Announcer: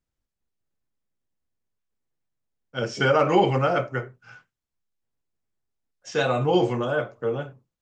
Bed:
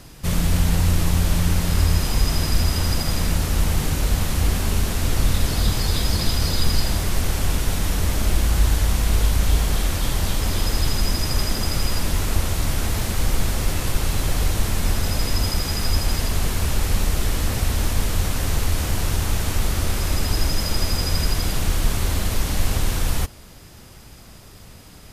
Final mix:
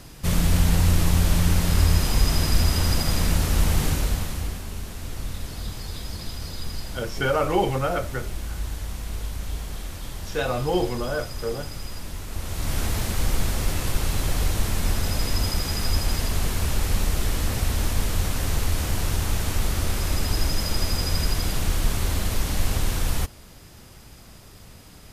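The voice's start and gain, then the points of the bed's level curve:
4.20 s, -3.0 dB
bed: 3.89 s -0.5 dB
4.65 s -12.5 dB
12.28 s -12.5 dB
12.77 s -2.5 dB

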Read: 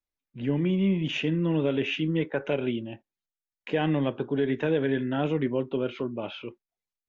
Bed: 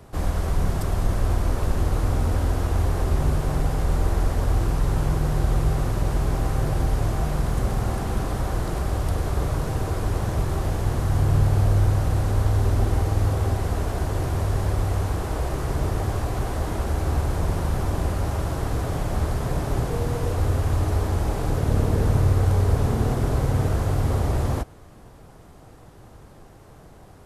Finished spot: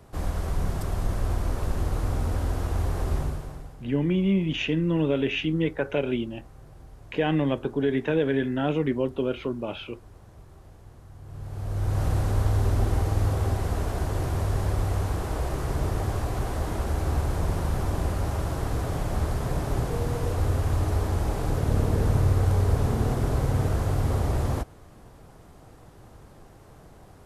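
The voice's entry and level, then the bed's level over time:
3.45 s, +1.5 dB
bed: 3.17 s -4.5 dB
3.86 s -25 dB
11.20 s -25 dB
12.03 s -2.5 dB

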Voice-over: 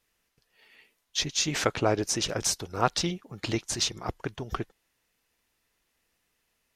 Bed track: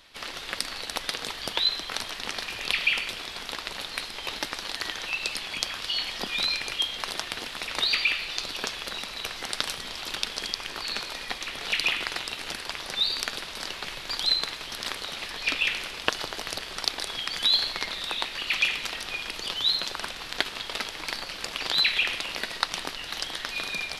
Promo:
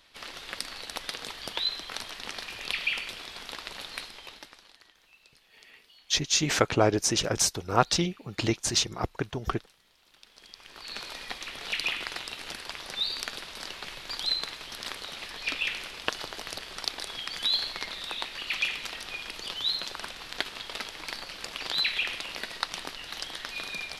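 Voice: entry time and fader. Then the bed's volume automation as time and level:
4.95 s, +2.5 dB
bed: 4.00 s -5 dB
4.98 s -29 dB
10.08 s -29 dB
11.05 s -4.5 dB

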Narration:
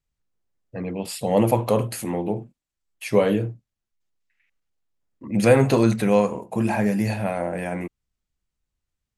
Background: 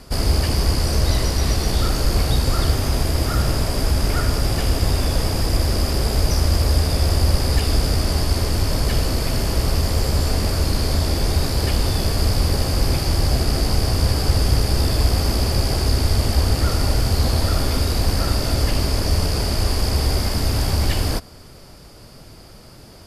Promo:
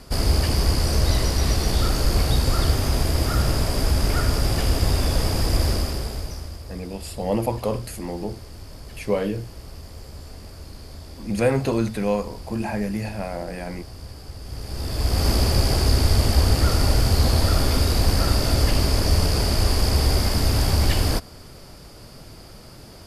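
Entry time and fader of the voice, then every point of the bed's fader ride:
5.95 s, -4.5 dB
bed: 5.69 s -1.5 dB
6.62 s -20 dB
14.40 s -20 dB
15.27 s 0 dB

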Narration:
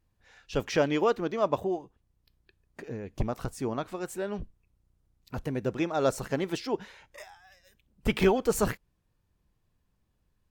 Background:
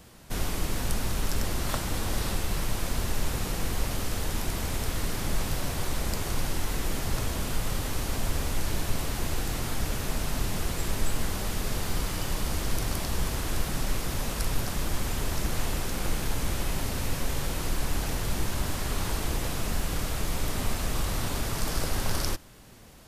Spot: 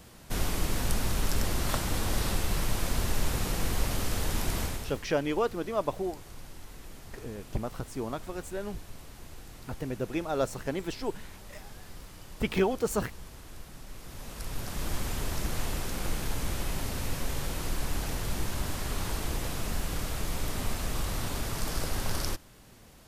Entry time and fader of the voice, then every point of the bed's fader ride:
4.35 s, -3.0 dB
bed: 4.62 s 0 dB
5.07 s -17 dB
13.87 s -17 dB
14.89 s -3 dB

